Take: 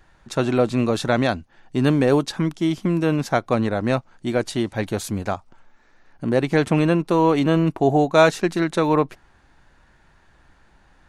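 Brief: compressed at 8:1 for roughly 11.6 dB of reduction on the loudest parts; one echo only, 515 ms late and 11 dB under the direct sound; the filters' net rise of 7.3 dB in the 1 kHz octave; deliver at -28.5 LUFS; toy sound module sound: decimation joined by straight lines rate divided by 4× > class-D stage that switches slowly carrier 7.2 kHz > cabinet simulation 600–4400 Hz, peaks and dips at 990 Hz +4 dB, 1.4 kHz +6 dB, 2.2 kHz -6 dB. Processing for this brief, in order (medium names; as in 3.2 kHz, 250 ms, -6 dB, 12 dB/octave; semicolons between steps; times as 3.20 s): peaking EQ 1 kHz +6 dB; compression 8:1, threshold -18 dBFS; delay 515 ms -11 dB; decimation joined by straight lines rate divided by 4×; class-D stage that switches slowly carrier 7.2 kHz; cabinet simulation 600–4400 Hz, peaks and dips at 990 Hz +4 dB, 1.4 kHz +6 dB, 2.2 kHz -6 dB; trim -0.5 dB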